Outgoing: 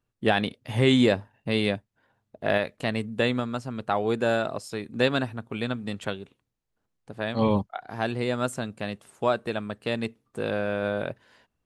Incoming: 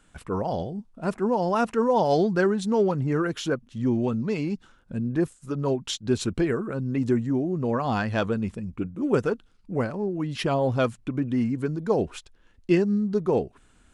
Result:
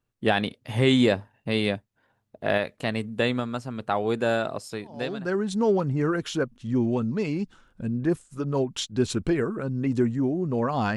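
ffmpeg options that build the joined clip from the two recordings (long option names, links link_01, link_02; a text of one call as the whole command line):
ffmpeg -i cue0.wav -i cue1.wav -filter_complex "[0:a]apad=whole_dur=10.96,atrim=end=10.96,atrim=end=5.52,asetpts=PTS-STARTPTS[link_01];[1:a]atrim=start=1.83:end=8.07,asetpts=PTS-STARTPTS[link_02];[link_01][link_02]acrossfade=duration=0.8:curve1=qua:curve2=qua" out.wav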